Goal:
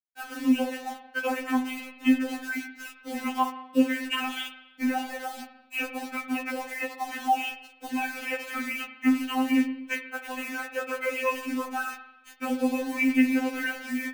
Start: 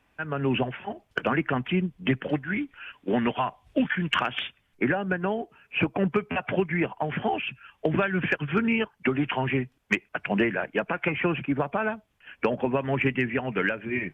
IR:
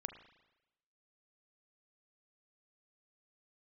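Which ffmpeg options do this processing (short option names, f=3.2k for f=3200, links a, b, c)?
-filter_complex "[0:a]asplit=3[a][b][c];[a]afade=t=out:st=1.7:d=0.02[d];[b]adynamicequalizer=threshold=0.01:dfrequency=480:dqfactor=1.3:tfrequency=480:tqfactor=1.3:attack=5:release=100:ratio=0.375:range=3.5:mode=cutabove:tftype=bell,afade=t=in:st=1.7:d=0.02,afade=t=out:st=4.16:d=0.02[e];[c]afade=t=in:st=4.16:d=0.02[f];[d][e][f]amix=inputs=3:normalize=0,flanger=delay=0.8:depth=5.5:regen=-40:speed=0.66:shape=triangular,acrusher=bits=6:mix=0:aa=0.000001[g];[1:a]atrim=start_sample=2205[h];[g][h]afir=irnorm=-1:irlink=0,afftfilt=real='re*3.46*eq(mod(b,12),0)':imag='im*3.46*eq(mod(b,12),0)':win_size=2048:overlap=0.75,volume=6.5dB"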